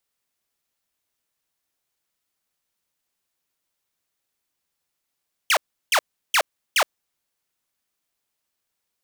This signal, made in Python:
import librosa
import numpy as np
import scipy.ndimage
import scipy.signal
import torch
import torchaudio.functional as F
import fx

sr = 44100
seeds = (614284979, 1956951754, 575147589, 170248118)

y = fx.laser_zaps(sr, level_db=-12.5, start_hz=3400.0, end_hz=510.0, length_s=0.07, wave='saw', shots=4, gap_s=0.35)